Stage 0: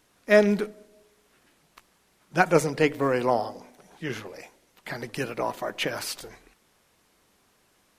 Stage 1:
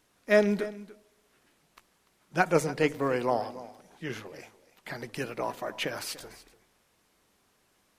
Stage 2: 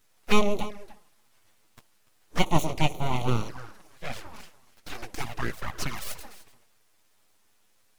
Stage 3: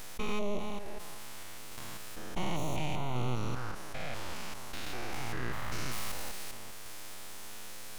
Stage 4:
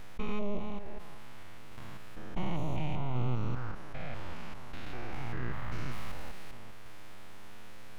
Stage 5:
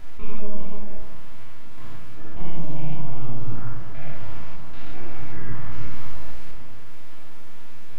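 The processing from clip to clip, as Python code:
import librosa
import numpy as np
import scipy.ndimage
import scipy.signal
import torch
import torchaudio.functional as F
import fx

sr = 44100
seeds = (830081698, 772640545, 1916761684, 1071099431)

y1 = x + 10.0 ** (-17.0 / 20.0) * np.pad(x, (int(292 * sr / 1000.0), 0))[:len(x)]
y1 = y1 * 10.0 ** (-4.0 / 20.0)
y2 = fx.high_shelf(y1, sr, hz=11000.0, db=5.5)
y2 = np.abs(y2)
y2 = fx.env_flanger(y2, sr, rest_ms=9.9, full_db=-26.0)
y2 = y2 * 10.0 ** (6.0 / 20.0)
y3 = fx.spec_steps(y2, sr, hold_ms=200)
y3 = fx.tremolo_random(y3, sr, seeds[0], hz=3.5, depth_pct=55)
y3 = fx.env_flatten(y3, sr, amount_pct=70)
y3 = y3 * 10.0 ** (-6.0 / 20.0)
y4 = fx.bass_treble(y3, sr, bass_db=6, treble_db=-14)
y4 = y4 * 10.0 ** (-3.0 / 20.0)
y5 = 10.0 ** (-24.0 / 20.0) * np.tanh(y4 / 10.0 ** (-24.0 / 20.0))
y5 = fx.room_shoebox(y5, sr, seeds[1], volume_m3=740.0, walls='furnished', distance_m=3.0)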